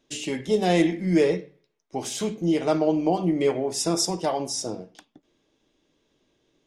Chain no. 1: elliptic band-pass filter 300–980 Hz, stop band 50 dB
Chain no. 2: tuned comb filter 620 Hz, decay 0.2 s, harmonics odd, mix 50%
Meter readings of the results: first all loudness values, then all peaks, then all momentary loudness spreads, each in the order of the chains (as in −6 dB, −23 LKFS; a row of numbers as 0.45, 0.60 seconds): −26.0, −30.0 LKFS; −10.0, −14.0 dBFS; 14, 10 LU